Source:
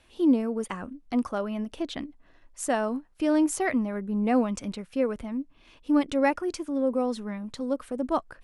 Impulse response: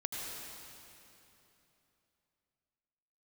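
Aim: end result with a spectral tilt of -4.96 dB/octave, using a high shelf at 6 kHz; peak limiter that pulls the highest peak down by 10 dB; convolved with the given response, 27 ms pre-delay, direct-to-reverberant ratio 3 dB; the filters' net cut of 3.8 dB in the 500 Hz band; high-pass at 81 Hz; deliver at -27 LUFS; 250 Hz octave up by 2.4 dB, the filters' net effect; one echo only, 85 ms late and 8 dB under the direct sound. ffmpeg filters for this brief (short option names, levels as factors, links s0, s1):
-filter_complex "[0:a]highpass=81,equalizer=f=250:t=o:g=4.5,equalizer=f=500:t=o:g=-6,highshelf=f=6000:g=3.5,alimiter=limit=0.0944:level=0:latency=1,aecho=1:1:85:0.398,asplit=2[s0][s1];[1:a]atrim=start_sample=2205,adelay=27[s2];[s1][s2]afir=irnorm=-1:irlink=0,volume=0.531[s3];[s0][s3]amix=inputs=2:normalize=0,volume=1.12"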